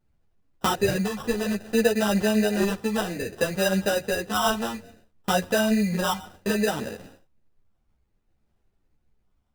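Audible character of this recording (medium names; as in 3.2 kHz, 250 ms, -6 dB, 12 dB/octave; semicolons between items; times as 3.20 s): phasing stages 4, 0.61 Hz, lowest notch 630–1800 Hz; aliases and images of a low sample rate 2.2 kHz, jitter 0%; a shimmering, thickened sound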